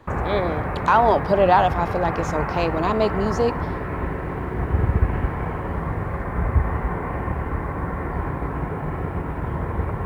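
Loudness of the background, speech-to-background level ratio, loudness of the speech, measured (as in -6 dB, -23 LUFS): -26.5 LUFS, 5.0 dB, -21.5 LUFS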